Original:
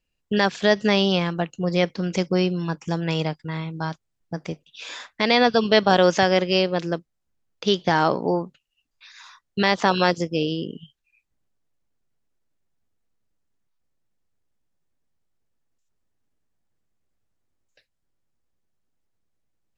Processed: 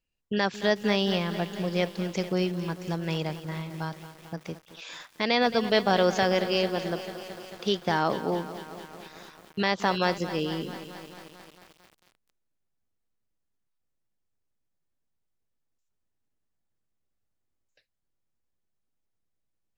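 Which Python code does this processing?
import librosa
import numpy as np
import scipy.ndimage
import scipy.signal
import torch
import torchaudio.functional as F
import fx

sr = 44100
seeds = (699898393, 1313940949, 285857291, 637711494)

y = fx.echo_crushed(x, sr, ms=222, feedback_pct=80, bits=6, wet_db=-13.0)
y = F.gain(torch.from_numpy(y), -6.0).numpy()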